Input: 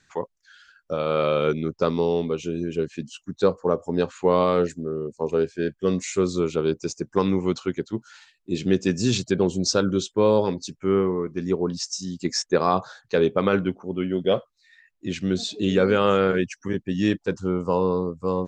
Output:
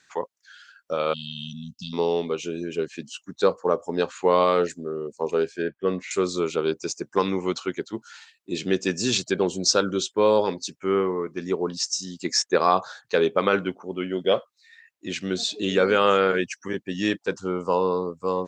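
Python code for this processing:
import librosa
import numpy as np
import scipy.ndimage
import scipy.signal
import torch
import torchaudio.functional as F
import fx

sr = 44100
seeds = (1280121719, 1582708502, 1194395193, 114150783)

y = fx.spec_erase(x, sr, start_s=1.13, length_s=0.8, low_hz=250.0, high_hz=2600.0)
y = fx.lowpass(y, sr, hz=2200.0, slope=12, at=(5.62, 6.11))
y = fx.highpass(y, sr, hz=550.0, slope=6)
y = y * librosa.db_to_amplitude(3.5)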